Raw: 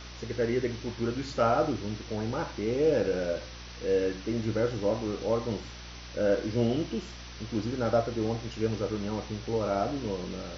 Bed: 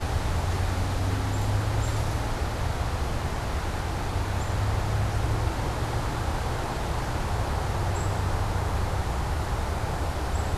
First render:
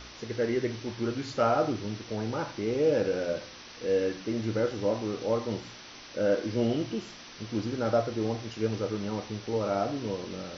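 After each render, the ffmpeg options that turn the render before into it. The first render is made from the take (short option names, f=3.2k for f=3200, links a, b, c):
-af "bandreject=f=60:t=h:w=4,bandreject=f=120:t=h:w=4,bandreject=f=180:t=h:w=4"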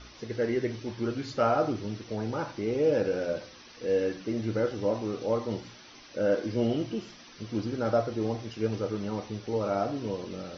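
-af "afftdn=nr=8:nf=-47"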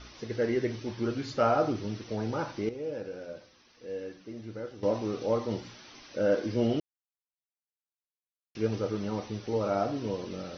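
-filter_complex "[0:a]asplit=5[a][b][c][d][e];[a]atrim=end=2.692[f];[b]atrim=start=2.688:end=4.832,asetpts=PTS-STARTPTS,volume=-11dB[g];[c]atrim=start=4.828:end=6.8,asetpts=PTS-STARTPTS,afade=t=out:st=1.968:d=0.004:c=hsin[h];[d]atrim=start=6.8:end=8.55,asetpts=PTS-STARTPTS,volume=0[i];[e]atrim=start=8.55,asetpts=PTS-STARTPTS,afade=t=in:d=0.004:c=hsin[j];[f][g]acrossfade=d=0.004:c1=hsin:c2=hsin[k];[h][i][j]concat=n=3:v=0:a=1[l];[k][l]acrossfade=d=0.004:c1=hsin:c2=hsin"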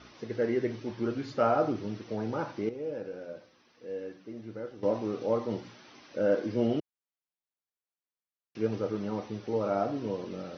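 -af "highpass=120,highshelf=f=3.4k:g=-9.5"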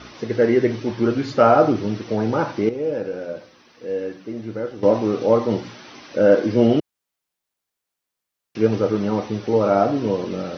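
-af "volume=12dB,alimiter=limit=-3dB:level=0:latency=1"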